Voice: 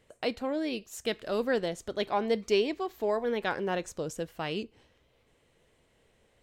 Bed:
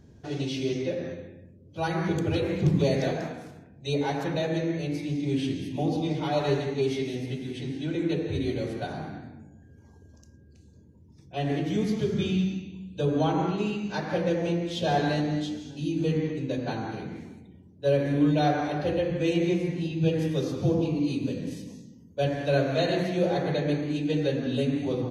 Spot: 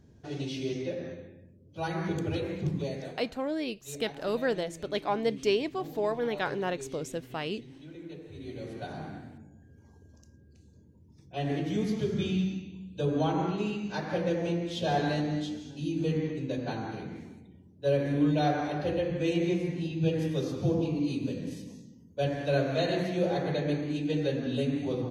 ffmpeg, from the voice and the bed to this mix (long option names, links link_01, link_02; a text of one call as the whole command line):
ffmpeg -i stem1.wav -i stem2.wav -filter_complex "[0:a]adelay=2950,volume=-0.5dB[link_01];[1:a]volume=9dB,afade=type=out:start_time=2.26:duration=0.93:silence=0.251189,afade=type=in:start_time=8.36:duration=0.74:silence=0.211349[link_02];[link_01][link_02]amix=inputs=2:normalize=0" out.wav